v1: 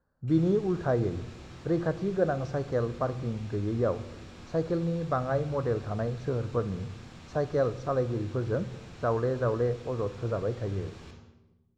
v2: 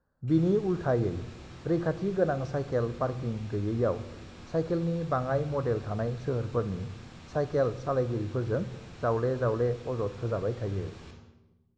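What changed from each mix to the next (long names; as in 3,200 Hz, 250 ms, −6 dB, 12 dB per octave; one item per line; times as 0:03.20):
background: add Savitzky-Golay smoothing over 9 samples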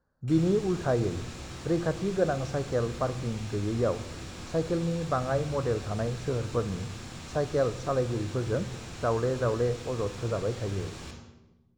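background +5.5 dB
master: remove high-frequency loss of the air 99 metres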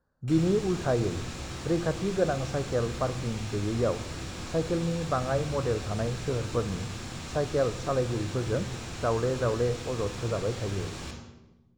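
background +3.5 dB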